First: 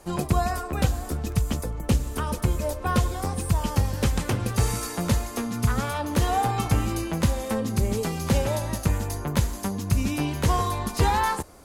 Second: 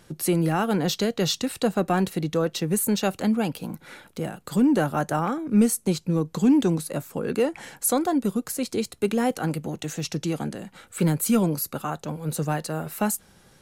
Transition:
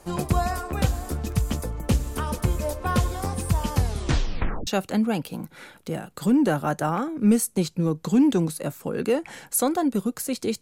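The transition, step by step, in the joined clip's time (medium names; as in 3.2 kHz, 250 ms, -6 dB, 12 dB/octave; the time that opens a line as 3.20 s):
first
3.75 s: tape stop 0.92 s
4.67 s: go over to second from 2.97 s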